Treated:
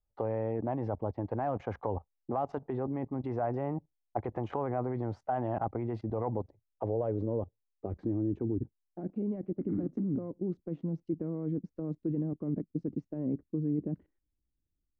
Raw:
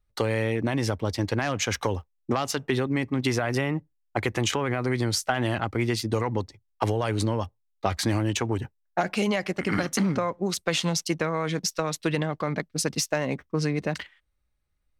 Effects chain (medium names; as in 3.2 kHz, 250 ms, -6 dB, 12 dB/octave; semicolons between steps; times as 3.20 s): level held to a coarse grid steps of 16 dB; low-pass sweep 780 Hz -> 310 Hz, 6.03–8.59 s; trim -2.5 dB